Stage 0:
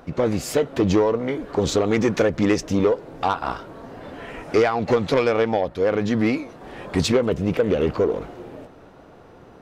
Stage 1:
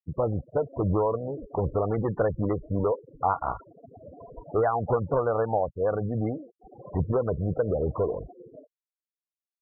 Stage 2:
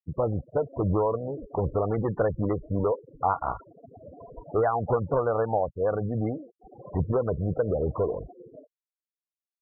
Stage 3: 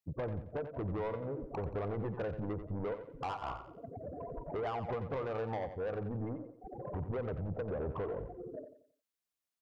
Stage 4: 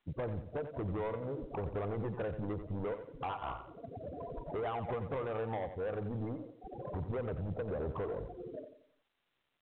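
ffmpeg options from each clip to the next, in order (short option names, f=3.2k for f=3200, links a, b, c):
-af "lowpass=f=1.4k:w=0.5412,lowpass=f=1.4k:w=1.3066,afftfilt=real='re*gte(hypot(re,im),0.0562)':imag='im*gte(hypot(re,im),0.0562)':win_size=1024:overlap=0.75,firequalizer=gain_entry='entry(110,0);entry(240,-12);entry(640,-2)':delay=0.05:min_phase=1"
-af anull
-filter_complex "[0:a]acompressor=threshold=-43dB:ratio=2,asoftclip=type=tanh:threshold=-36dB,asplit=2[a][b];[b]aecho=0:1:89|178|267|356:0.316|0.114|0.041|0.0148[c];[a][c]amix=inputs=2:normalize=0,volume=3.5dB"
-ar 8000 -c:a pcm_mulaw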